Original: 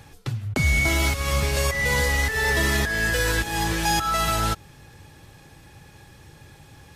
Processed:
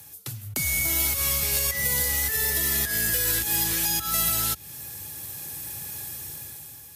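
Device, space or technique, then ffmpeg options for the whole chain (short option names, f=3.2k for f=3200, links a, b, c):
FM broadcast chain: -filter_complex "[0:a]highpass=f=61:w=0.5412,highpass=f=61:w=1.3066,dynaudnorm=f=220:g=7:m=11dB,acrossover=split=410|1700|4900[a][b][c][d];[a]acompressor=threshold=-23dB:ratio=4[e];[b]acompressor=threshold=-31dB:ratio=4[f];[c]acompressor=threshold=-28dB:ratio=4[g];[d]acompressor=threshold=-39dB:ratio=4[h];[e][f][g][h]amix=inputs=4:normalize=0,aemphasis=mode=production:type=50fm,alimiter=limit=-11.5dB:level=0:latency=1:release=208,asoftclip=type=hard:threshold=-14dB,lowpass=f=15k:w=0.5412,lowpass=f=15k:w=1.3066,aemphasis=mode=production:type=50fm,volume=-8.5dB"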